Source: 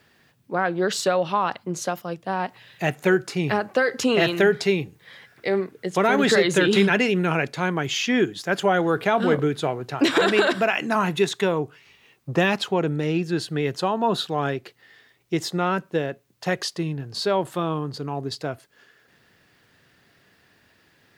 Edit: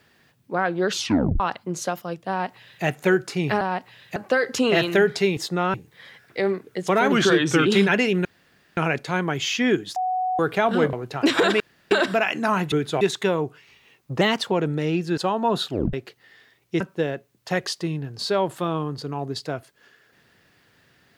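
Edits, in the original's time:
0:00.90: tape stop 0.50 s
0:02.29–0:02.84: duplicate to 0:03.61
0:06.20–0:06.67: play speed 87%
0:07.26: splice in room tone 0.52 s
0:08.45–0:08.88: beep over 741 Hz −21 dBFS
0:09.42–0:09.71: move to 0:11.19
0:10.38: splice in room tone 0.31 s
0:12.39–0:12.73: play speed 112%
0:13.39–0:13.76: remove
0:14.27: tape stop 0.25 s
0:15.39–0:15.76: move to 0:04.82

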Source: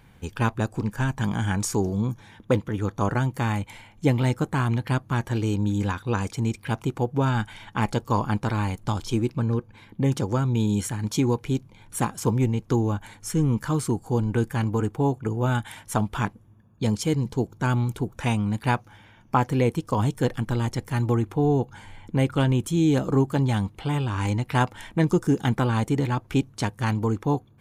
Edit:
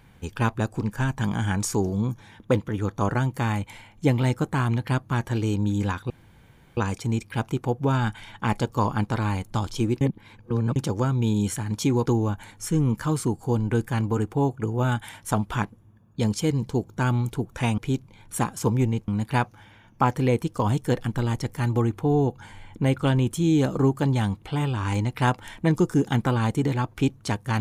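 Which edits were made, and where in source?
0:06.10: splice in room tone 0.67 s
0:09.34–0:10.09: reverse
0:11.39–0:12.69: move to 0:18.41

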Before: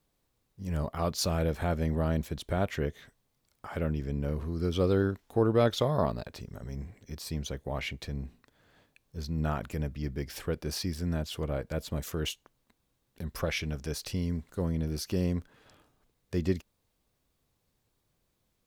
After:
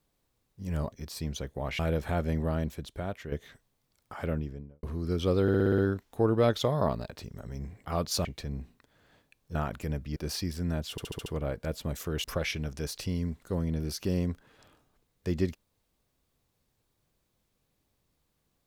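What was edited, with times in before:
0:00.92–0:01.32: swap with 0:07.02–0:07.89
0:01.85–0:02.85: fade out, to −10 dB
0:03.77–0:04.36: fade out and dull
0:04.95: stutter 0.06 s, 7 plays
0:09.19–0:09.45: remove
0:10.06–0:10.58: remove
0:11.33: stutter 0.07 s, 6 plays
0:12.31–0:13.31: remove

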